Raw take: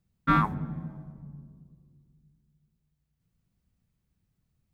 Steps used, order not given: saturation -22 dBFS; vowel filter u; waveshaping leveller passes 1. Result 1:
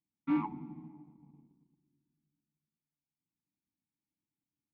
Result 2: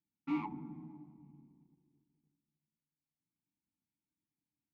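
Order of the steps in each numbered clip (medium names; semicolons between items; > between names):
waveshaping leveller > vowel filter > saturation; saturation > waveshaping leveller > vowel filter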